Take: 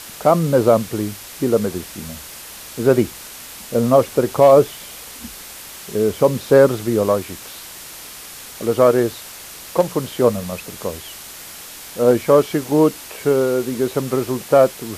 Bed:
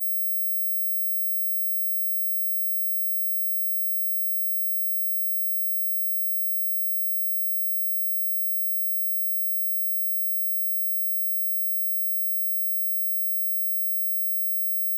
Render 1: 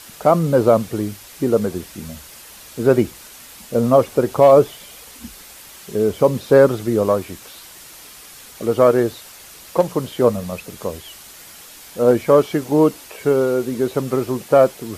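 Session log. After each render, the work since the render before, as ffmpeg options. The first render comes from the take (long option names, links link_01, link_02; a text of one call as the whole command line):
ffmpeg -i in.wav -af "afftdn=noise_reduction=6:noise_floor=-37" out.wav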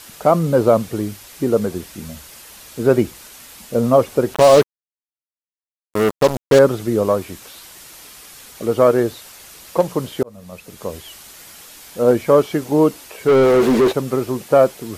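ffmpeg -i in.wav -filter_complex "[0:a]asettb=1/sr,asplit=3[link_01][link_02][link_03];[link_01]atrim=end=4.344[link_04];[link_02]atrim=start=4.34:end=6.59,asetpts=PTS-STARTPTS,afade=type=in:duration=0.004:curve=qsin,afade=type=out:start_time=2.246:duration=0.004:curve=qsin,acrusher=bits=2:mix=0:aa=0.5[link_05];[link_03]atrim=start=6.586[link_06];[link_04][link_05]acrossfade=duration=0.004:curve1=hsin:curve2=qsin[link_07];[link_07][link_06]acrossfade=duration=0.004:curve1=qsin:curve2=hsin,asplit=3[link_08][link_09][link_10];[link_08]afade=type=out:start_time=13.27:duration=0.02[link_11];[link_09]asplit=2[link_12][link_13];[link_13]highpass=frequency=720:poles=1,volume=33dB,asoftclip=type=tanh:threshold=-5dB[link_14];[link_12][link_14]amix=inputs=2:normalize=0,lowpass=frequency=1100:poles=1,volume=-6dB,afade=type=in:start_time=13.27:duration=0.02,afade=type=out:start_time=13.91:duration=0.02[link_15];[link_10]afade=type=in:start_time=13.91:duration=0.02[link_16];[link_11][link_15][link_16]amix=inputs=3:normalize=0,asplit=2[link_17][link_18];[link_17]atrim=end=10.23,asetpts=PTS-STARTPTS,afade=type=out:start_time=10.226:duration=0.004:curve=hsin[link_19];[link_18]atrim=start=10.23,asetpts=PTS-STARTPTS,afade=type=in:duration=0.77[link_20];[link_19][link_20]concat=n=2:v=0:a=1" out.wav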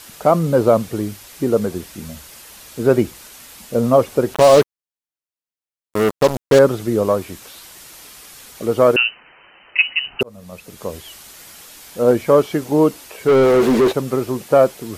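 ffmpeg -i in.wav -filter_complex "[0:a]asettb=1/sr,asplit=3[link_01][link_02][link_03];[link_01]atrim=end=8.964[link_04];[link_02]atrim=start=8.96:end=10.21,asetpts=PTS-STARTPTS,afade=type=in:duration=0.004:curve=qsin,afade=type=out:start_time=1.246:duration=0.004:curve=qsin,lowpass=frequency=2600:width_type=q:width=0.5098,lowpass=frequency=2600:width_type=q:width=0.6013,lowpass=frequency=2600:width_type=q:width=0.9,lowpass=frequency=2600:width_type=q:width=2.563,afreqshift=-3100[link_05];[link_03]atrim=start=10.206[link_06];[link_04][link_05]acrossfade=duration=0.004:curve1=hsin:curve2=qsin[link_07];[link_07][link_06]acrossfade=duration=0.004:curve1=qsin:curve2=hsin" out.wav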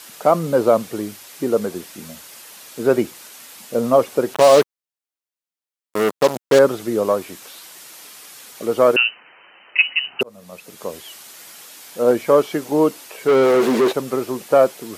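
ffmpeg -i in.wav -af "highpass=150,lowshelf=frequency=250:gain=-6" out.wav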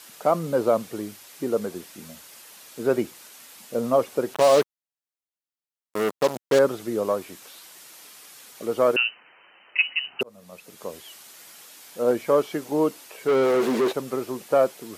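ffmpeg -i in.wav -af "volume=-6dB" out.wav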